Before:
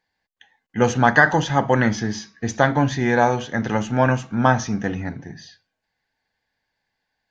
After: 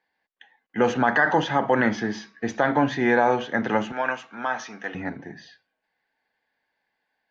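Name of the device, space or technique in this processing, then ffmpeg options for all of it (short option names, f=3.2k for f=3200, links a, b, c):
DJ mixer with the lows and highs turned down: -filter_complex "[0:a]acrossover=split=210 3700:gain=0.158 1 0.158[a][b][c];[a][b][c]amix=inputs=3:normalize=0,alimiter=limit=-10dB:level=0:latency=1:release=44,asettb=1/sr,asplit=3[d][e][f];[d]atrim=end=3.924[g];[e]atrim=start=3.92:end=4.95,asetpts=PTS-STARTPTS,afade=t=in:d=0.004:c=qsin,afade=t=out:st=1.026:d=0.004:c=qsin,highpass=f=1.4k:p=1[h];[f]atrim=start=4.946[i];[g][h]acrossfade=d=0.004:c1=hsin:c2=qsin[j];[j][i]acrossfade=d=0.004:c1=qsin:c2=hsin,volume=1.5dB"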